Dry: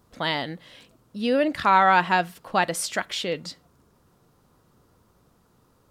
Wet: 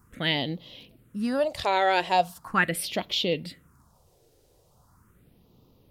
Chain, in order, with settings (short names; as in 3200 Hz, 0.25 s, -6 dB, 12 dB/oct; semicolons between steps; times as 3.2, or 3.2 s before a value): phaser stages 4, 0.4 Hz, lowest notch 190–1600 Hz; gain +3 dB